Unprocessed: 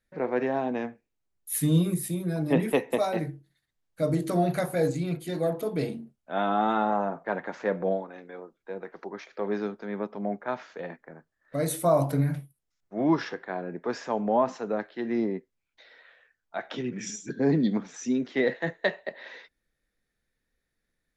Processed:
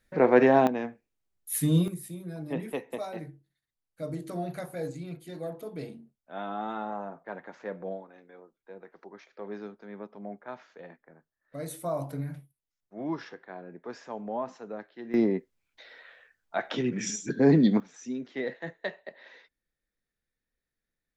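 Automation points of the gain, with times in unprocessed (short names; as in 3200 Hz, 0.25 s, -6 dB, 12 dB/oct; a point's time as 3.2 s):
+8 dB
from 0.67 s -1 dB
from 1.88 s -9.5 dB
from 15.14 s +3.5 dB
from 17.8 s -8 dB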